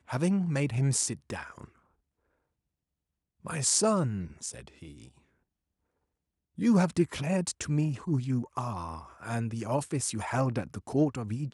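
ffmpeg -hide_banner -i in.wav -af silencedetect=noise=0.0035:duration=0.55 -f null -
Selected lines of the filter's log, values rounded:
silence_start: 1.68
silence_end: 3.45 | silence_duration: 1.76
silence_start: 5.09
silence_end: 6.58 | silence_duration: 1.49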